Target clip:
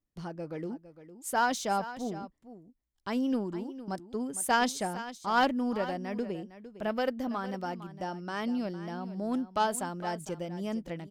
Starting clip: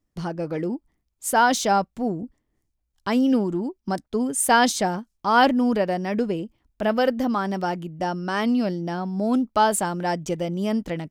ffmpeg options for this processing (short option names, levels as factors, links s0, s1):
-filter_complex "[0:a]aeval=exprs='0.501*(cos(1*acos(clip(val(0)/0.501,-1,1)))-cos(1*PI/2))+0.0631*(cos(3*acos(clip(val(0)/0.501,-1,1)))-cos(3*PI/2))':c=same,asplit=2[s0][s1];[s1]aecho=0:1:457:0.2[s2];[s0][s2]amix=inputs=2:normalize=0,volume=0.473"